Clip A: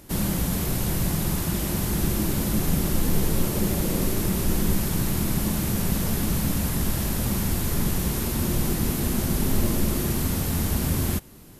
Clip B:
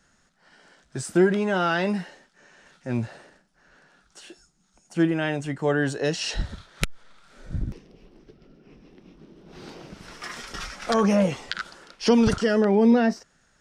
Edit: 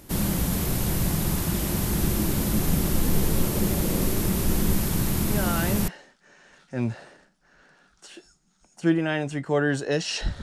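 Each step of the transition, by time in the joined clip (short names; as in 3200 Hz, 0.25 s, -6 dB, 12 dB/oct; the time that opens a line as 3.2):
clip A
5.3 add clip B from 1.43 s 0.58 s -6.5 dB
5.88 switch to clip B from 2.01 s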